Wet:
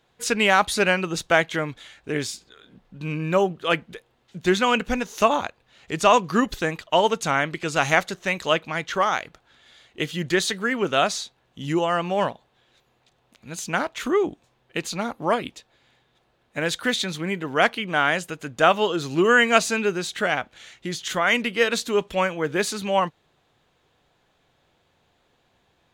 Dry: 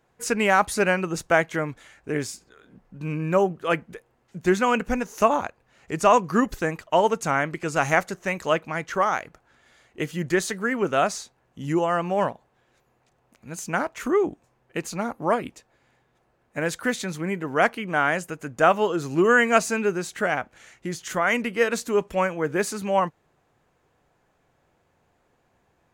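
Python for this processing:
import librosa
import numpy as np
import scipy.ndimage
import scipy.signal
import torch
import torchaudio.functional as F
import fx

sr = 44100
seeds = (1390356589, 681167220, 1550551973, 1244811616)

y = fx.peak_eq(x, sr, hz=3600.0, db=13.0, octaves=0.82)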